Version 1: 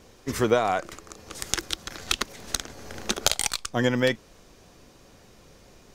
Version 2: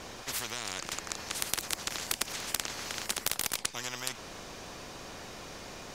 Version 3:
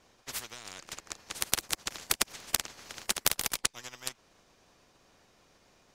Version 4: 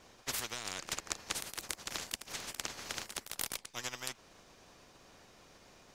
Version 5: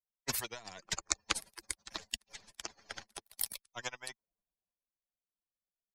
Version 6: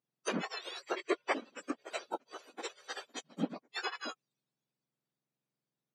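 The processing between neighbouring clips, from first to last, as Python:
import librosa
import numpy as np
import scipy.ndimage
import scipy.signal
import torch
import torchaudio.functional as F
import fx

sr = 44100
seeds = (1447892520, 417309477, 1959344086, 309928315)

y1 = fx.high_shelf(x, sr, hz=8800.0, db=-7.5)
y1 = fx.spectral_comp(y1, sr, ratio=10.0)
y2 = fx.upward_expand(y1, sr, threshold_db=-46.0, expansion=2.5)
y2 = y2 * librosa.db_to_amplitude(5.5)
y3 = fx.over_compress(y2, sr, threshold_db=-38.0, ratio=-1.0)
y3 = y3 * librosa.db_to_amplitude(-1.0)
y4 = fx.bin_expand(y3, sr, power=3.0)
y4 = fx.band_widen(y4, sr, depth_pct=40)
y4 = y4 * librosa.db_to_amplitude(7.5)
y5 = fx.octave_mirror(y4, sr, pivot_hz=1600.0)
y5 = fx.weighting(y5, sr, curve='ITU-R 468')
y5 = fx.env_lowpass_down(y5, sr, base_hz=2800.0, full_db=-35.5)
y5 = y5 * librosa.db_to_amplitude(4.0)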